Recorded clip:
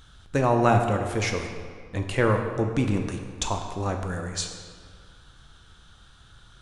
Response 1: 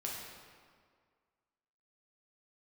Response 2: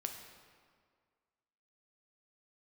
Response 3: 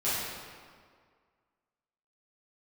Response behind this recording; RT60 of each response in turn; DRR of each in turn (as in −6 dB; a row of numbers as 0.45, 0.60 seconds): 2; 1.9, 1.9, 1.9 seconds; −3.5, 3.5, −12.5 decibels